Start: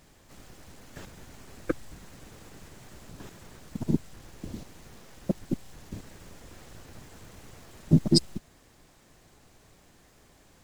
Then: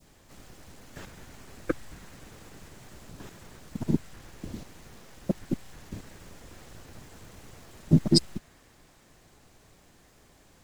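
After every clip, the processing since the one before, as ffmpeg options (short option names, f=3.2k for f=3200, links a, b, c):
-af "adynamicequalizer=threshold=0.00282:dfrequency=1700:dqfactor=0.83:tfrequency=1700:tqfactor=0.83:attack=5:release=100:ratio=0.375:range=2:mode=boostabove:tftype=bell"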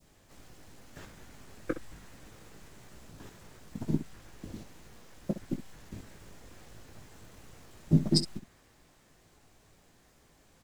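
-af "aecho=1:1:19|65:0.355|0.237,volume=-5dB"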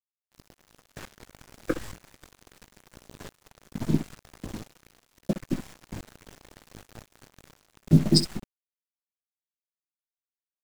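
-af "acrusher=bits=6:mix=0:aa=0.5,volume=5.5dB"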